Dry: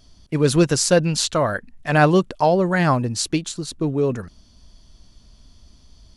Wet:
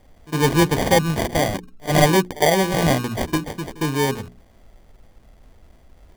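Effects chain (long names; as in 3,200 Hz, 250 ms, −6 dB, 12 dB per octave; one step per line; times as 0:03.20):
decimation without filtering 33×
mains-hum notches 60/120/180/240/300/360/420 Hz
echo ahead of the sound 58 ms −20 dB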